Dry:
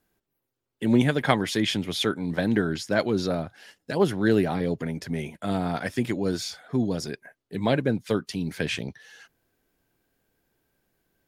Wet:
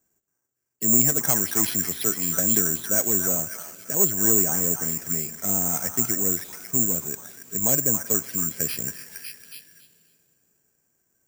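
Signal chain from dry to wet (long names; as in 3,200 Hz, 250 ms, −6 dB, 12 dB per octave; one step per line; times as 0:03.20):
high-pass filter 52 Hz 24 dB per octave
soft clipping −13.5 dBFS, distortion −17 dB
floating-point word with a short mantissa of 2 bits
high-frequency loss of the air 280 metres
on a send: echo through a band-pass that steps 277 ms, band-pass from 1,300 Hz, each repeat 0.7 octaves, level −1.5 dB
on the sum: dense smooth reverb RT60 3.6 s, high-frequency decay 0.7×, DRR 18.5 dB
bad sample-rate conversion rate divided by 6×, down filtered, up zero stuff
level −4 dB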